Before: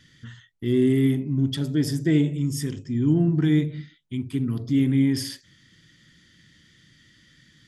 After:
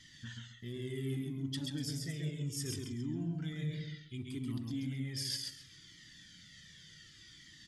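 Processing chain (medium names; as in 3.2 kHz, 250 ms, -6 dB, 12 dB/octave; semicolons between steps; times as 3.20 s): peak limiter -15.5 dBFS, peak gain reduction 6.5 dB; peaking EQ 5.8 kHz +10 dB 2.6 oct; reverse; compression, threshold -30 dBFS, peak gain reduction 11 dB; reverse; peaking EQ 180 Hz +2.5 dB 0.77 oct; on a send: feedback delay 134 ms, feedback 23%, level -3.5 dB; on the sum: Shepard-style flanger falling 0.67 Hz; trim -3 dB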